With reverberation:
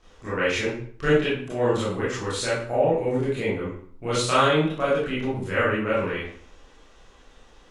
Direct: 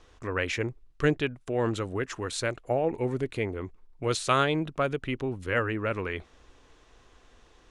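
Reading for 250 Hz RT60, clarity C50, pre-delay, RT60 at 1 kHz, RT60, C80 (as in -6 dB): 0.55 s, 1.0 dB, 23 ms, 0.55 s, 0.55 s, 6.0 dB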